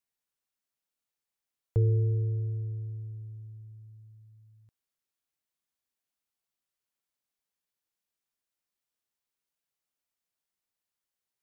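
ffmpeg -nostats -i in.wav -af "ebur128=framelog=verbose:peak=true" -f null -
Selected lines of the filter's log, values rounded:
Integrated loudness:
  I:         -30.4 LUFS
  Threshold: -43.2 LUFS
Loudness range:
  LRA:        19.0 LU
  Threshold: -56.1 LUFS
  LRA low:   -51.8 LUFS
  LRA high:  -32.8 LUFS
True peak:
  Peak:      -16.3 dBFS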